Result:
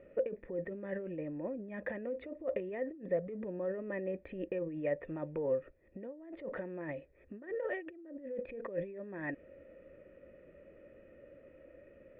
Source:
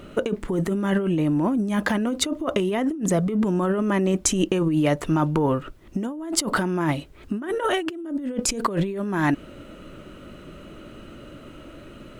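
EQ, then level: vocal tract filter e; bell 71 Hz +9.5 dB 0.28 oct; -3.0 dB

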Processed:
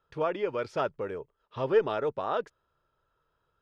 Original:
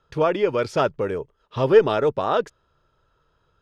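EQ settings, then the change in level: low shelf 400 Hz -6.5 dB; high shelf 4300 Hz -11 dB; -6.5 dB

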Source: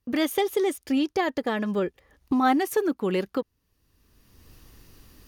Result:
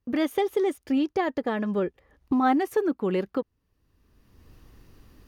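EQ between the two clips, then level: high shelf 3000 Hz -11 dB; 0.0 dB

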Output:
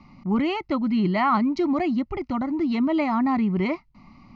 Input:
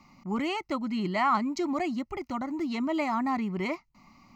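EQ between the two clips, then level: LPF 4800 Hz 24 dB/oct; low shelf 320 Hz +9 dB; +2.5 dB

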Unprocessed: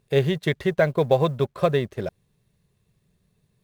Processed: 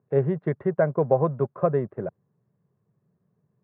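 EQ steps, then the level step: HPF 110 Hz 24 dB/oct; LPF 1400 Hz 24 dB/oct; -1.5 dB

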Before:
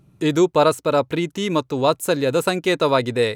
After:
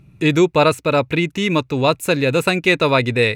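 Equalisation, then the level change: low shelf 200 Hz +11 dB; bell 2500 Hz +12.5 dB 1 oct; notch 3100 Hz, Q 8.8; -1.0 dB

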